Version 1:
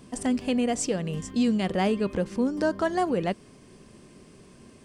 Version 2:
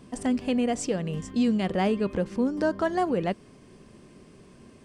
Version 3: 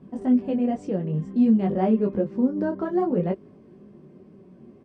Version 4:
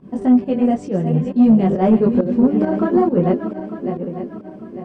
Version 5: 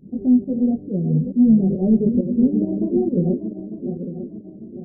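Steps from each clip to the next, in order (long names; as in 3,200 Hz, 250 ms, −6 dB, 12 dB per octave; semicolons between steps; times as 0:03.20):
high-shelf EQ 4,500 Hz −6 dB
resonant band-pass 260 Hz, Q 0.63; comb filter 5.3 ms, depth 30%; micro pitch shift up and down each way 20 cents; level +7 dB
feedback delay that plays each chunk backwards 450 ms, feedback 60%, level −9 dB; fake sidechain pumping 136 BPM, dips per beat 1, −12 dB, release 129 ms; soft clipping −13 dBFS, distortion −19 dB; level +8.5 dB
Gaussian smoothing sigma 20 samples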